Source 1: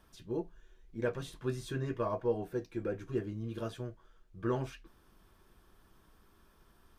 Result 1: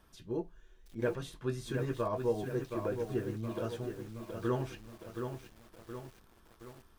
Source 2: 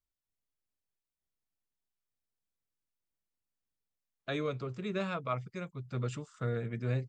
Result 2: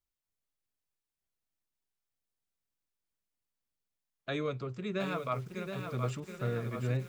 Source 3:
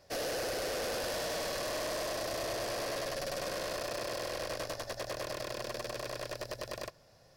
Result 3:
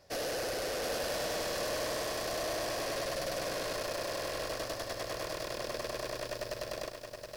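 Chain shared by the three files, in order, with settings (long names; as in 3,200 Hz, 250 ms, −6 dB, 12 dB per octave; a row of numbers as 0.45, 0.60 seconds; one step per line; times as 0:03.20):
feedback echo at a low word length 721 ms, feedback 55%, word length 9 bits, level −6 dB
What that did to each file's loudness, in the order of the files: +0.5, +1.0, +1.0 LU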